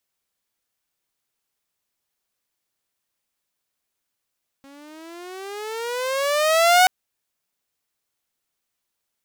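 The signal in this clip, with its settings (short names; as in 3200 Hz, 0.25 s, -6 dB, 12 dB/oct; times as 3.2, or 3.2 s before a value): gliding synth tone saw, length 2.23 s, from 272 Hz, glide +17.5 st, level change +33.5 dB, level -8 dB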